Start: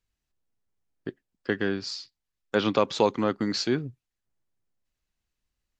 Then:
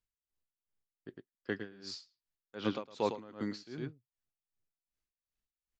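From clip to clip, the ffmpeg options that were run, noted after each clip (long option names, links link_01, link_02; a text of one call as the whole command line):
ffmpeg -i in.wav -af "aecho=1:1:107:0.398,aeval=exprs='val(0)*pow(10,-20*(0.5-0.5*cos(2*PI*2.6*n/s))/20)':channel_layout=same,volume=-8dB" out.wav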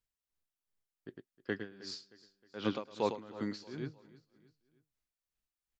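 ffmpeg -i in.wav -af "aecho=1:1:312|624|936:0.1|0.046|0.0212" out.wav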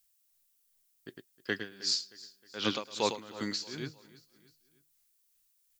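ffmpeg -i in.wav -af "crystalizer=i=7.5:c=0" out.wav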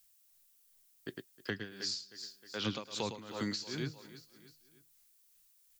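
ffmpeg -i in.wav -filter_complex "[0:a]acrossover=split=180[link_01][link_02];[link_02]acompressor=threshold=-41dB:ratio=5[link_03];[link_01][link_03]amix=inputs=2:normalize=0,volume=4.5dB" out.wav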